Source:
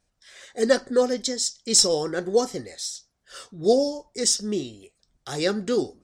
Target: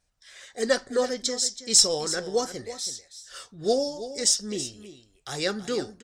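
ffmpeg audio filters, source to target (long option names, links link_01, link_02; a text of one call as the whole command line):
ffmpeg -i in.wav -af "equalizer=frequency=290:width=0.55:gain=-6.5,aecho=1:1:326:0.224" out.wav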